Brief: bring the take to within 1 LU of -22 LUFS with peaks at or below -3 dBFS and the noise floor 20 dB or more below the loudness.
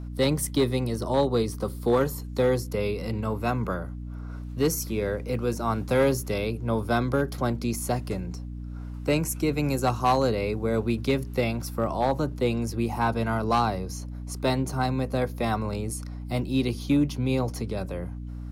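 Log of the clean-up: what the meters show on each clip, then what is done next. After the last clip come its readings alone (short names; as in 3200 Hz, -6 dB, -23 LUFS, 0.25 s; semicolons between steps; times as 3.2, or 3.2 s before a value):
clipped 0.5%; flat tops at -15.0 dBFS; hum 60 Hz; harmonics up to 300 Hz; hum level -33 dBFS; loudness -27.0 LUFS; peak -15.0 dBFS; loudness target -22.0 LUFS
-> clip repair -15 dBFS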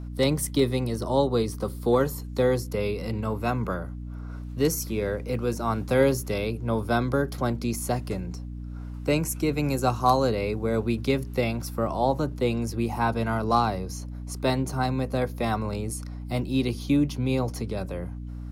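clipped 0.0%; hum 60 Hz; harmonics up to 300 Hz; hum level -33 dBFS
-> notches 60/120/180/240/300 Hz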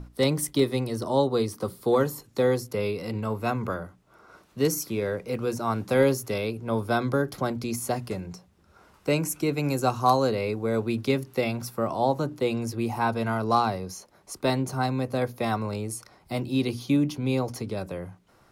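hum none; loudness -27.0 LUFS; peak -8.5 dBFS; loudness target -22.0 LUFS
-> gain +5 dB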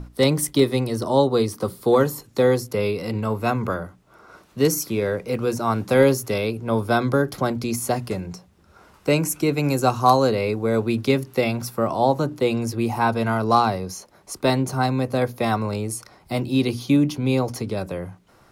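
loudness -22.0 LUFS; peak -3.5 dBFS; noise floor -55 dBFS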